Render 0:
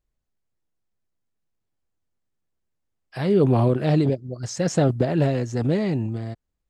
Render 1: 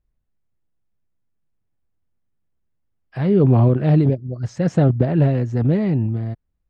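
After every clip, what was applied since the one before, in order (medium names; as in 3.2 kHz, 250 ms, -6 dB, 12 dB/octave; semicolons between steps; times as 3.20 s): tone controls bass +7 dB, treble -15 dB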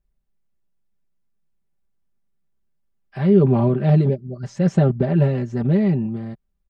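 comb 5.1 ms, depth 78%; trim -2.5 dB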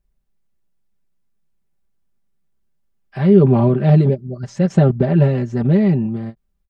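endings held to a fixed fall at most 480 dB/s; trim +3.5 dB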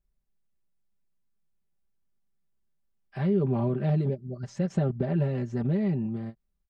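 compression 2:1, threshold -17 dBFS, peak gain reduction 7 dB; trim -8.5 dB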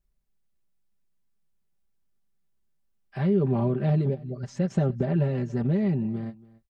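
delay 281 ms -21.5 dB; trim +2 dB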